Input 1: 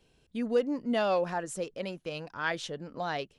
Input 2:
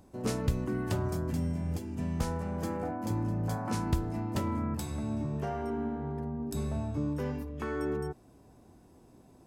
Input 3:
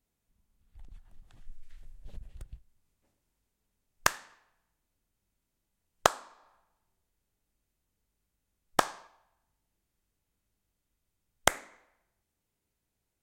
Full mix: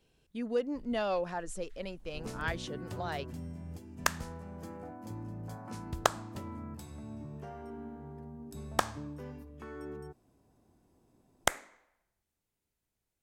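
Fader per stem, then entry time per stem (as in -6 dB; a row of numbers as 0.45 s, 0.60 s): -4.5 dB, -10.5 dB, -3.5 dB; 0.00 s, 2.00 s, 0.00 s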